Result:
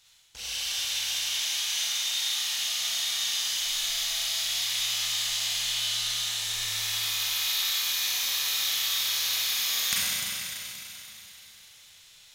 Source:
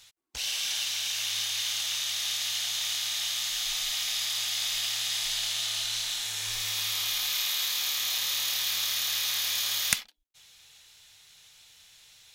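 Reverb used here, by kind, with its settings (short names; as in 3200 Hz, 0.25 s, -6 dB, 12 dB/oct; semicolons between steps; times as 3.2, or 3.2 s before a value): Schroeder reverb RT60 3.4 s, combs from 33 ms, DRR -8.5 dB; gain -7.5 dB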